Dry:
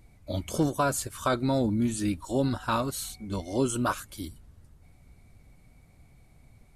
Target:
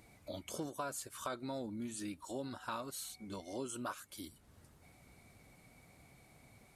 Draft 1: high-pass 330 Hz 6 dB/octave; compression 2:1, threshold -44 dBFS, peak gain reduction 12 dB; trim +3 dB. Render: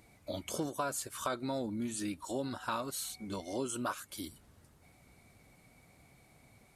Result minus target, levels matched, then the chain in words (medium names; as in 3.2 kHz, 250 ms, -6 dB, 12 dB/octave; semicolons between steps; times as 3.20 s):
compression: peak gain reduction -5.5 dB
high-pass 330 Hz 6 dB/octave; compression 2:1, threshold -55 dBFS, peak gain reduction 17.5 dB; trim +3 dB